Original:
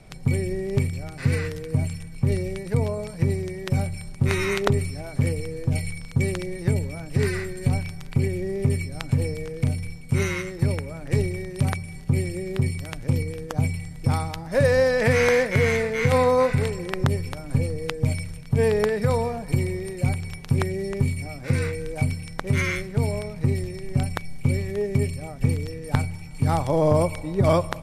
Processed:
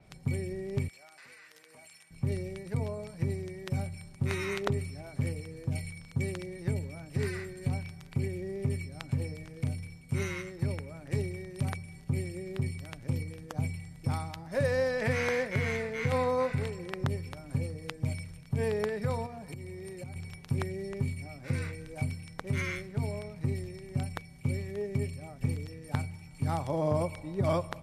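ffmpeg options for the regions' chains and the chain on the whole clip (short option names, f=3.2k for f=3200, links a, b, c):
-filter_complex "[0:a]asettb=1/sr,asplit=3[a][b][c];[a]atrim=end=0.884[d];[b]atrim=start=0.88:end=2.11,asetpts=PTS-STARTPTS,afade=t=in:d=0.004:c=qsin,afade=t=out:st=1.226:d=0.004:c=qsin,highpass=820,acompressor=threshold=-40dB:ratio=10:attack=3.2:release=140:knee=1:detection=peak[e];[c]atrim=start=2.106[f];[d][e]acrossfade=d=0.004:c1=hsin:c2=qsin[g];[g][f]acrossfade=d=0.004:c1=qsin:c2=hsin,asettb=1/sr,asplit=3[h][i][j];[h]atrim=end=19.264[k];[i]atrim=start=19.26:end=20.16,asetpts=PTS-STARTPTS,afade=t=in:d=0.004:c=qsin,afade=t=out:st=0.896:d=0.004:c=qsin,highpass=50,acompressor=threshold=-28dB:ratio=16:attack=3.2:release=140:knee=1:detection=peak[l];[j]atrim=start=20.156[m];[k][l]acrossfade=d=0.004:c1=hsin:c2=qsin[n];[n][m]acrossfade=d=0.004:c1=qsin:c2=hsin,highpass=43,bandreject=f=470:w=15,adynamicequalizer=threshold=0.00447:dfrequency=5600:dqfactor=0.7:tfrequency=5600:tqfactor=0.7:attack=5:release=100:ratio=0.375:range=2:mode=cutabove:tftype=highshelf,volume=-9dB"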